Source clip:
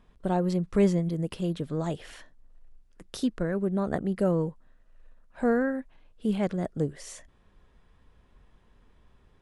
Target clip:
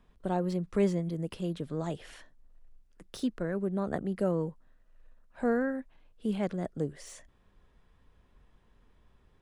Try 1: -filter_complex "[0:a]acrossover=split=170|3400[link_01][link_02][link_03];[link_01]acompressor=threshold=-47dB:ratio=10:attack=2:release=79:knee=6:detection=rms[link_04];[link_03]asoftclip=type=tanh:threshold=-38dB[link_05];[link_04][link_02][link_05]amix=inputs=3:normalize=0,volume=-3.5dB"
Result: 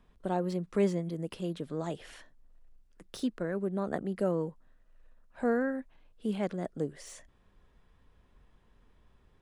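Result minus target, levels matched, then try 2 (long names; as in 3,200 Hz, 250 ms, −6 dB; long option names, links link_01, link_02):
downward compressor: peak gain reduction +11 dB
-filter_complex "[0:a]acrossover=split=170|3400[link_01][link_02][link_03];[link_01]acompressor=threshold=-35dB:ratio=10:attack=2:release=79:knee=6:detection=rms[link_04];[link_03]asoftclip=type=tanh:threshold=-38dB[link_05];[link_04][link_02][link_05]amix=inputs=3:normalize=0,volume=-3.5dB"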